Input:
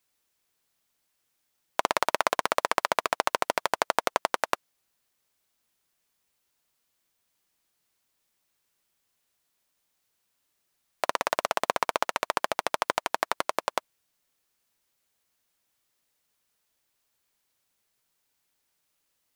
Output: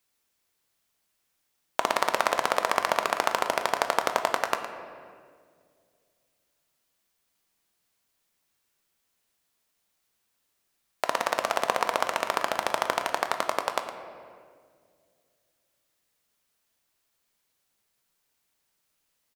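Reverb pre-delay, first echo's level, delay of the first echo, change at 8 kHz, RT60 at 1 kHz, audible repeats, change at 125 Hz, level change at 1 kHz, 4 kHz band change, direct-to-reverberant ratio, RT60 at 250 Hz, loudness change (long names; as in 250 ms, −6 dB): 4 ms, −12.0 dB, 112 ms, +0.5 dB, 1.7 s, 1, +1.0 dB, +1.0 dB, +1.0 dB, 5.5 dB, 2.6 s, +1.0 dB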